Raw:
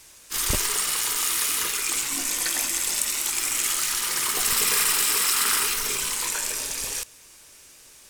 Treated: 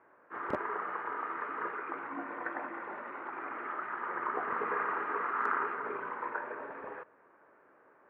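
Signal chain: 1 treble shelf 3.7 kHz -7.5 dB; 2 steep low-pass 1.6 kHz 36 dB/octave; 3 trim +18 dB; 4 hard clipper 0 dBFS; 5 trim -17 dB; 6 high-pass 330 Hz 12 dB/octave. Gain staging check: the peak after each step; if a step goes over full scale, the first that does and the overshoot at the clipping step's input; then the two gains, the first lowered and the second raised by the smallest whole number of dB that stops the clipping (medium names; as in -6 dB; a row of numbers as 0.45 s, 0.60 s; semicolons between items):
-10.0 dBFS, -12.5 dBFS, +5.5 dBFS, 0.0 dBFS, -17.0 dBFS, -16.5 dBFS; step 3, 5.5 dB; step 3 +12 dB, step 5 -11 dB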